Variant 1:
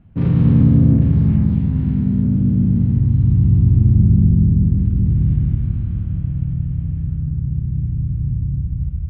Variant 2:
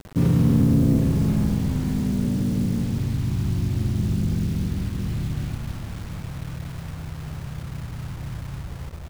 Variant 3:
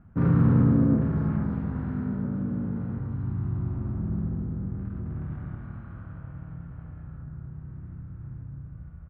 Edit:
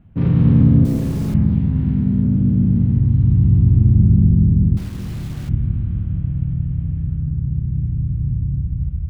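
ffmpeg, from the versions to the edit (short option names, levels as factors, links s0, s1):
-filter_complex "[1:a]asplit=2[s0][s1];[0:a]asplit=3[s2][s3][s4];[s2]atrim=end=0.852[s5];[s0]atrim=start=0.848:end=1.342[s6];[s3]atrim=start=1.338:end=4.772[s7];[s1]atrim=start=4.768:end=5.492[s8];[s4]atrim=start=5.488[s9];[s5][s6]acrossfade=d=0.004:c1=hsin:c2=hsin[s10];[s10][s7]acrossfade=d=0.004:c1=hsin:c2=hsin[s11];[s11][s8]acrossfade=d=0.004:c1=hsin:c2=hsin[s12];[s12][s9]acrossfade=d=0.004:c1=hsin:c2=hsin"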